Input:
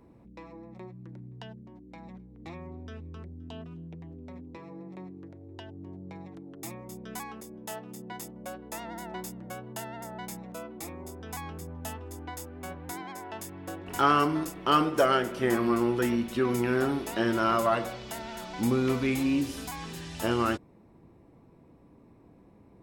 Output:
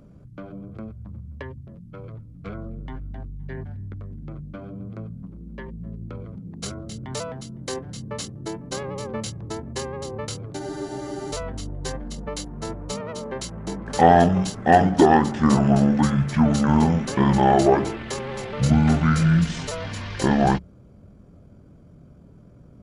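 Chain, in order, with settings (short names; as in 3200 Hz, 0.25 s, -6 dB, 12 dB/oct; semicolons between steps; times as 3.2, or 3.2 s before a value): notches 60/120/180/240/300 Hz; pitch shift -9 st; spectral freeze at 10.61, 0.72 s; gain +9 dB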